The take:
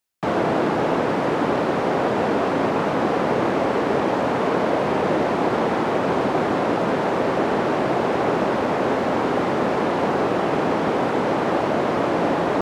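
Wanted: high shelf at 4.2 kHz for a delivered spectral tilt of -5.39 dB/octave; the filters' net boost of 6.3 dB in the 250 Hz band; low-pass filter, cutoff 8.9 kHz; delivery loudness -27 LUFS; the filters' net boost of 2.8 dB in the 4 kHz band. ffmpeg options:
-af "lowpass=8900,equalizer=f=250:t=o:g=8,equalizer=f=4000:t=o:g=7,highshelf=f=4200:g=-6,volume=0.355"

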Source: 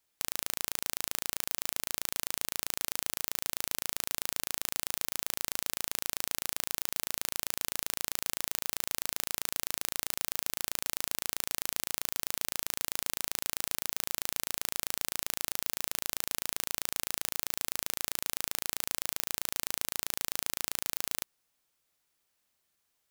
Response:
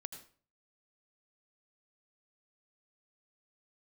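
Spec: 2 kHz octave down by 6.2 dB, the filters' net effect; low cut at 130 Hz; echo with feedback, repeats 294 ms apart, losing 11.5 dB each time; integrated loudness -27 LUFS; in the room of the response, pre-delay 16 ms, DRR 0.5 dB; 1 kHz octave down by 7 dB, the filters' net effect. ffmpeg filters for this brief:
-filter_complex "[0:a]highpass=130,equalizer=f=1000:t=o:g=-7.5,equalizer=f=2000:t=o:g=-6,aecho=1:1:294|588|882:0.266|0.0718|0.0194,asplit=2[s0][s1];[1:a]atrim=start_sample=2205,adelay=16[s2];[s1][s2]afir=irnorm=-1:irlink=0,volume=1.41[s3];[s0][s3]amix=inputs=2:normalize=0,volume=1.5"

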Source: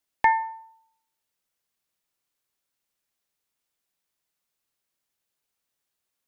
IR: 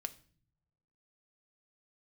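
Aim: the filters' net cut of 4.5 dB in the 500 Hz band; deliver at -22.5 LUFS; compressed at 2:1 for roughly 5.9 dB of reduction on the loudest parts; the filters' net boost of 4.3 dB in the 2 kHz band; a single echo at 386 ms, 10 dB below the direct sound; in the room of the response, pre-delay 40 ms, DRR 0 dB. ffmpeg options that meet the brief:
-filter_complex "[0:a]equalizer=f=500:t=o:g=-6.5,equalizer=f=2000:t=o:g=5,acompressor=threshold=0.0631:ratio=2,aecho=1:1:386:0.316,asplit=2[s0][s1];[1:a]atrim=start_sample=2205,adelay=40[s2];[s1][s2]afir=irnorm=-1:irlink=0,volume=1.26[s3];[s0][s3]amix=inputs=2:normalize=0,volume=1.58"

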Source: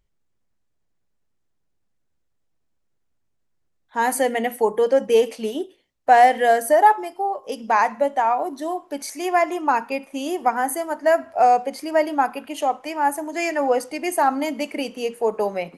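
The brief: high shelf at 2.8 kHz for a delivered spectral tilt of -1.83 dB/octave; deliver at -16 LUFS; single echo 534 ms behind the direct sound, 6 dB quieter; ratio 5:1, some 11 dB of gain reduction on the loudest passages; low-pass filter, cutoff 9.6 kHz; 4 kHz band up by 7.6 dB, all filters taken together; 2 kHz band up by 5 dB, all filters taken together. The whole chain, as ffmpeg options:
-af "lowpass=9600,equalizer=f=2000:t=o:g=3.5,highshelf=f=2800:g=3.5,equalizer=f=4000:t=o:g=6.5,acompressor=threshold=0.1:ratio=5,aecho=1:1:534:0.501,volume=2.66"

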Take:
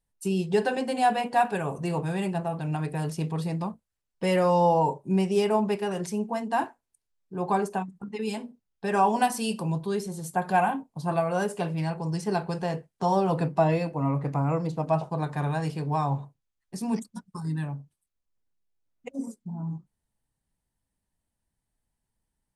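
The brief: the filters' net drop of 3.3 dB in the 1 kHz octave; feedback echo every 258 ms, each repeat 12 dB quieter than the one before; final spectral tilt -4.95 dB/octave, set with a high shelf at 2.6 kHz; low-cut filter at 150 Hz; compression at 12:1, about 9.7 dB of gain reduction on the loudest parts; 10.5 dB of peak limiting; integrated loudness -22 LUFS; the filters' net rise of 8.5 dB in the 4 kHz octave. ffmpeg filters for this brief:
-af "highpass=150,equalizer=f=1000:t=o:g=-6,highshelf=f=2600:g=8.5,equalizer=f=4000:t=o:g=4.5,acompressor=threshold=0.0398:ratio=12,alimiter=level_in=1.58:limit=0.0631:level=0:latency=1,volume=0.631,aecho=1:1:258|516|774:0.251|0.0628|0.0157,volume=5.96"

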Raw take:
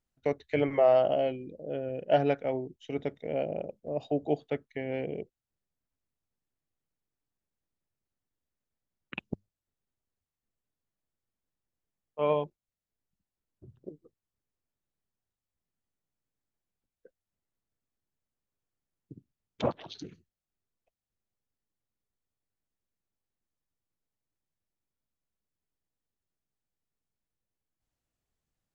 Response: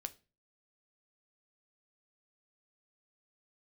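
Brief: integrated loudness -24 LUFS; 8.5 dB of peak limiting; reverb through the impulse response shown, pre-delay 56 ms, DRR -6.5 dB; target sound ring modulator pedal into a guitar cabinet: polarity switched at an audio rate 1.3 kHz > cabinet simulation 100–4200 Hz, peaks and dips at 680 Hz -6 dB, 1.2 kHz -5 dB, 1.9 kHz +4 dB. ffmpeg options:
-filter_complex "[0:a]alimiter=limit=0.0944:level=0:latency=1,asplit=2[s0][s1];[1:a]atrim=start_sample=2205,adelay=56[s2];[s1][s2]afir=irnorm=-1:irlink=0,volume=2.99[s3];[s0][s3]amix=inputs=2:normalize=0,aeval=exprs='val(0)*sgn(sin(2*PI*1300*n/s))':c=same,highpass=100,equalizer=f=680:t=q:w=4:g=-6,equalizer=f=1200:t=q:w=4:g=-5,equalizer=f=1900:t=q:w=4:g=4,lowpass=f=4200:w=0.5412,lowpass=f=4200:w=1.3066"

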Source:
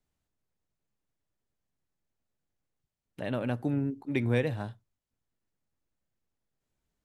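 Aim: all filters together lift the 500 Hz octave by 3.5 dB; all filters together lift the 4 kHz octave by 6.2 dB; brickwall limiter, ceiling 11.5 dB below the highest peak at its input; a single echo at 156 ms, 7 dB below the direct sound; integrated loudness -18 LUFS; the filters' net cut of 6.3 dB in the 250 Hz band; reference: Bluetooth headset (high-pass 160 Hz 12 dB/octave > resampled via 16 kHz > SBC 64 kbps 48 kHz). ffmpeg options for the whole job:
-af "equalizer=f=250:t=o:g=-8.5,equalizer=f=500:t=o:g=6,equalizer=f=4000:t=o:g=7.5,alimiter=limit=0.0631:level=0:latency=1,highpass=160,aecho=1:1:156:0.447,aresample=16000,aresample=44100,volume=8.41" -ar 48000 -c:a sbc -b:a 64k

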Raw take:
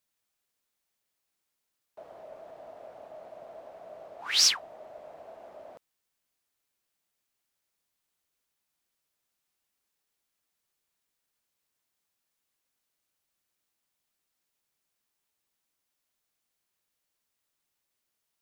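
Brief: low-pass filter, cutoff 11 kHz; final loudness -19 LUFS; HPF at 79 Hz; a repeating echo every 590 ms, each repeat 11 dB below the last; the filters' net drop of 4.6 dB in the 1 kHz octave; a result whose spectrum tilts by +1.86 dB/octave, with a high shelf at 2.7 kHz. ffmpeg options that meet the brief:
-af "highpass=79,lowpass=11000,equalizer=f=1000:t=o:g=-6,highshelf=f=2700:g=-5,aecho=1:1:590|1180|1770:0.282|0.0789|0.0221,volume=3.98"

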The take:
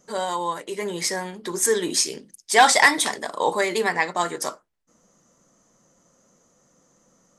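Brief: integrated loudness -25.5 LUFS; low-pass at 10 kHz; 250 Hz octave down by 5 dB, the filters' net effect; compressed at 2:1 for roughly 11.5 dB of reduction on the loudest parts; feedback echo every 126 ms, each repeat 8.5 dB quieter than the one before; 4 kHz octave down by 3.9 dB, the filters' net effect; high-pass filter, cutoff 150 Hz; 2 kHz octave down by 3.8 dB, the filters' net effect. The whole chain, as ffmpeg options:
-af "highpass=150,lowpass=10000,equalizer=f=250:t=o:g=-7,equalizer=f=2000:t=o:g=-3.5,equalizer=f=4000:t=o:g=-4,acompressor=threshold=0.0224:ratio=2,aecho=1:1:126|252|378|504:0.376|0.143|0.0543|0.0206,volume=2"

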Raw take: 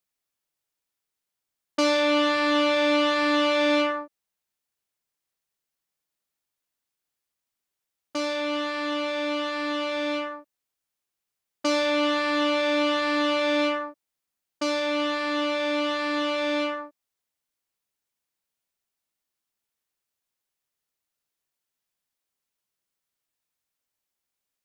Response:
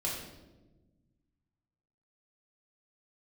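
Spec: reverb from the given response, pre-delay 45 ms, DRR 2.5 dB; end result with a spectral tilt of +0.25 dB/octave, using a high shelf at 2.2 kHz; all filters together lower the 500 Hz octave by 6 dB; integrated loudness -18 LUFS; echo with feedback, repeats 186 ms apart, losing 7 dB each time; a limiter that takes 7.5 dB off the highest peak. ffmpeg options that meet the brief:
-filter_complex "[0:a]equalizer=f=500:t=o:g=-7,highshelf=f=2200:g=-5,alimiter=limit=0.075:level=0:latency=1,aecho=1:1:186|372|558|744|930:0.447|0.201|0.0905|0.0407|0.0183,asplit=2[s0][s1];[1:a]atrim=start_sample=2205,adelay=45[s2];[s1][s2]afir=irnorm=-1:irlink=0,volume=0.447[s3];[s0][s3]amix=inputs=2:normalize=0,volume=4.22"

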